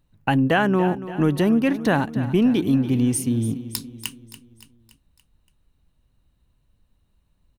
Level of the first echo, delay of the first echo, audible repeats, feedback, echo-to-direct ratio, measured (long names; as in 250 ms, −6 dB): −14.0 dB, 285 ms, 4, 52%, −12.5 dB